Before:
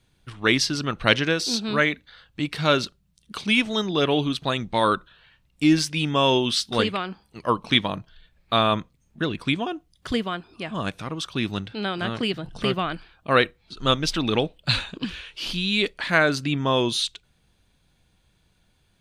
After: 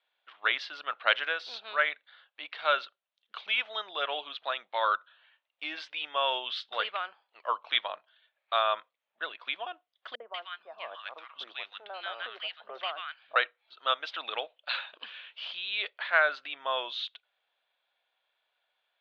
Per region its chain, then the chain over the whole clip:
0:10.15–0:13.36: low-shelf EQ 130 Hz −9 dB + three-band delay without the direct sound lows, mids, highs 50/190 ms, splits 200/1,200 Hz
whole clip: Chebyshev band-pass filter 600–3,500 Hz, order 3; dynamic equaliser 1,400 Hz, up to +5 dB, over −37 dBFS, Q 3.2; level −6.5 dB

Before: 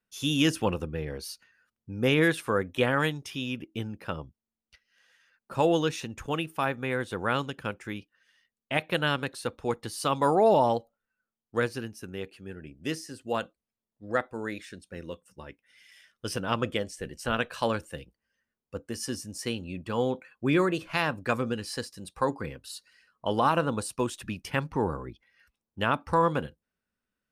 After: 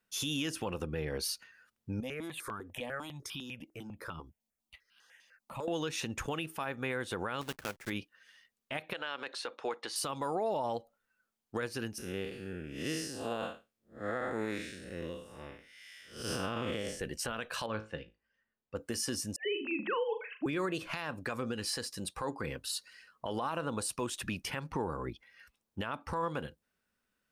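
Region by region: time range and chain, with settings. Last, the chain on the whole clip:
0:02.00–0:05.68: downward compressor 3 to 1, threshold −42 dBFS + step-sequenced phaser 10 Hz 380–1,900 Hz
0:07.41–0:07.92: one scale factor per block 3 bits + slack as between gear wheels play −49 dBFS + expander for the loud parts, over −44 dBFS
0:08.93–0:09.96: band-pass filter 450–4,700 Hz + downward compressor 2.5 to 1, threshold −34 dBFS
0:11.98–0:17.00: spectrum smeared in time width 187 ms + notch filter 950 Hz
0:17.66–0:18.76: high-frequency loss of the air 190 metres + tuned comb filter 54 Hz, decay 0.24 s, mix 70%
0:19.36–0:20.46: three sine waves on the formant tracks + mains-hum notches 50/100/150/200/250/300/350 Hz + flutter between parallel walls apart 6.7 metres, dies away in 0.26 s
whole clip: downward compressor, threshold −32 dBFS; low-shelf EQ 350 Hz −5 dB; brickwall limiter −30.5 dBFS; level +5.5 dB

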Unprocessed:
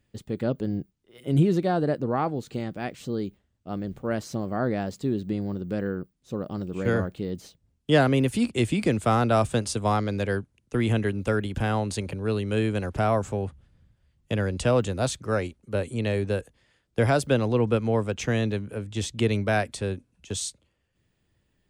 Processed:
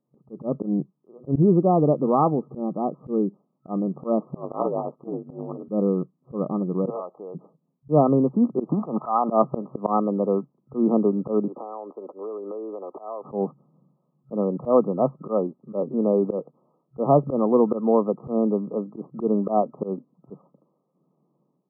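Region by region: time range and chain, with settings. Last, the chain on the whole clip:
0:04.35–0:05.69: high-pass filter 360 Hz + ring modulation 55 Hz + highs frequency-modulated by the lows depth 0.26 ms
0:06.90–0:07.35: high-pass with resonance 720 Hz, resonance Q 1.6 + downward compressor 1.5 to 1, threshold −45 dBFS
0:08.69–0:09.29: flat-topped bell 1,500 Hz +14.5 dB 2.7 octaves + downward compressor, threshold −20 dBFS
0:11.48–0:13.25: high-pass filter 360 Hz 24 dB per octave + downward compressor 8 to 1, threshold −37 dBFS
whole clip: brick-wall band-pass 130–1,300 Hz; automatic gain control gain up to 11 dB; volume swells 102 ms; level −3 dB

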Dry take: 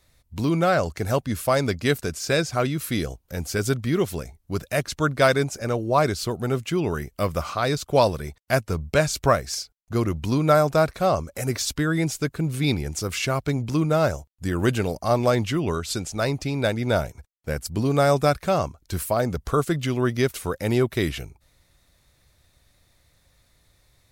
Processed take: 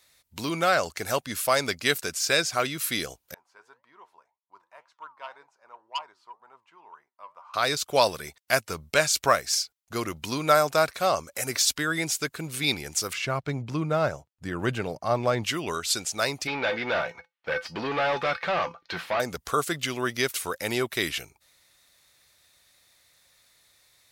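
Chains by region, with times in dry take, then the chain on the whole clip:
0:03.34–0:07.54: flanger 1.9 Hz, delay 5.9 ms, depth 6.5 ms, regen +79% + resonant band-pass 960 Hz, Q 10 + saturating transformer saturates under 2,100 Hz
0:13.13–0:15.44: low-pass filter 1,400 Hz 6 dB per octave + parametric band 130 Hz +7.5 dB 1 octave
0:16.47–0:19.20: tuned comb filter 170 Hz, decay 0.15 s, harmonics odd, mix 70% + mid-hump overdrive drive 28 dB, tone 4,900 Hz, clips at −14.5 dBFS + high-frequency loss of the air 320 metres
whole clip: low-pass filter 2,800 Hz 6 dB per octave; spectral tilt +4.5 dB per octave

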